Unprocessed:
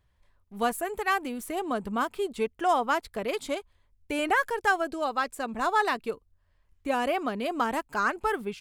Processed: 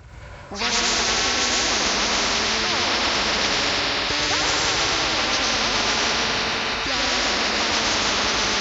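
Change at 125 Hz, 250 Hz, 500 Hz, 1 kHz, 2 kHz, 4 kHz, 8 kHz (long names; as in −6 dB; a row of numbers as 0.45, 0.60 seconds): can't be measured, +3.5 dB, +2.0 dB, +3.0 dB, +9.0 dB, +22.5 dB, +21.0 dB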